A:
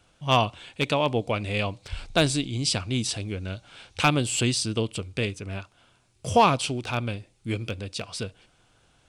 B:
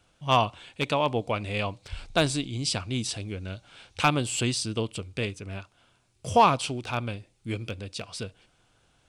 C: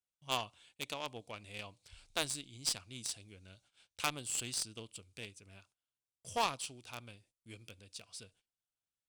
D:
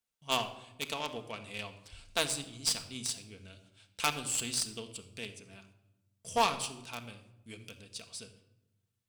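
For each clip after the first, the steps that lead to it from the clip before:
dynamic bell 1 kHz, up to +4 dB, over -36 dBFS, Q 1.2; trim -3 dB
gate -49 dBFS, range -18 dB; pre-emphasis filter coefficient 0.8; Chebyshev shaper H 3 -15 dB, 6 -21 dB, 7 -32 dB, 8 -25 dB, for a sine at -15.5 dBFS; trim +3 dB
reverberation RT60 0.90 s, pre-delay 4 ms, DRR 6 dB; trim +4 dB

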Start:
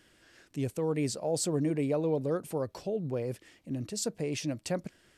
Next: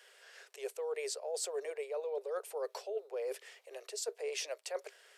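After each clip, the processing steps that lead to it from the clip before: Chebyshev high-pass 400 Hz, order 8; reverse; compression 10:1, threshold -39 dBFS, peak gain reduction 12.5 dB; reverse; trim +4 dB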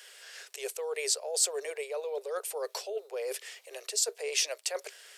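treble shelf 2.1 kHz +11.5 dB; trim +2 dB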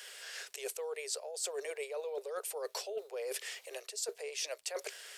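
crackle 130 per s -58 dBFS; reverse; compression 6:1, threshold -39 dBFS, peak gain reduction 16 dB; reverse; trim +2.5 dB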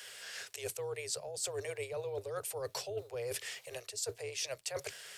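octave divider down 2 oct, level -3 dB

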